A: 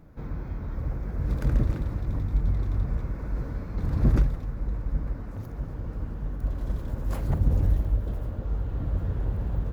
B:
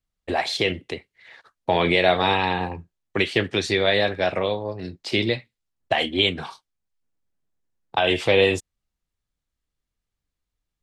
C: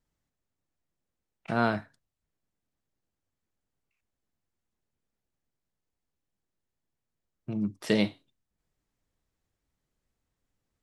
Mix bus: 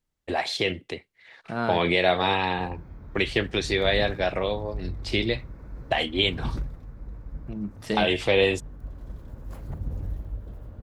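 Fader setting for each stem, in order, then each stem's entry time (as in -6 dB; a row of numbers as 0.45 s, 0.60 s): -9.5 dB, -3.0 dB, -2.5 dB; 2.40 s, 0.00 s, 0.00 s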